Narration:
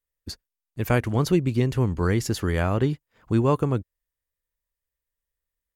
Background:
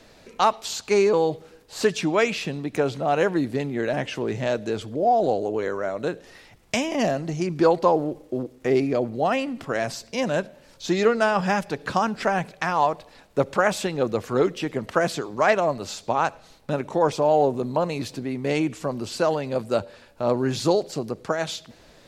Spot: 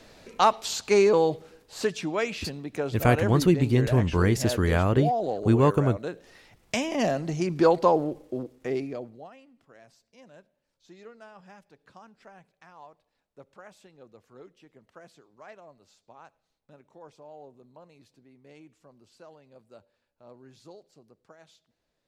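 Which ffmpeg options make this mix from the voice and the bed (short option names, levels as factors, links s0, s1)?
-filter_complex "[0:a]adelay=2150,volume=1.06[s0];[1:a]volume=1.78,afade=t=out:st=1.19:d=0.78:silence=0.473151,afade=t=in:st=6.12:d=1.18:silence=0.530884,afade=t=out:st=7.92:d=1.39:silence=0.0473151[s1];[s0][s1]amix=inputs=2:normalize=0"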